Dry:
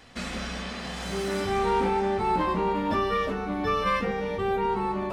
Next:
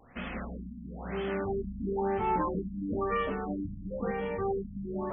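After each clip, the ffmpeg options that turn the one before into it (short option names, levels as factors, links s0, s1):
-af "afftfilt=real='re*lt(b*sr/1024,260*pow(3500/260,0.5+0.5*sin(2*PI*1*pts/sr)))':imag='im*lt(b*sr/1024,260*pow(3500/260,0.5+0.5*sin(2*PI*1*pts/sr)))':win_size=1024:overlap=0.75,volume=0.668"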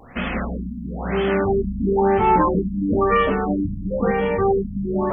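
-af "acontrast=73,volume=2"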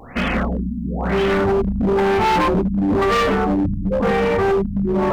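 -af "volume=10,asoftclip=hard,volume=0.1,volume=1.88"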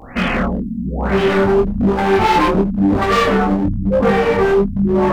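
-af "flanger=delay=19:depth=7.2:speed=1,volume=2"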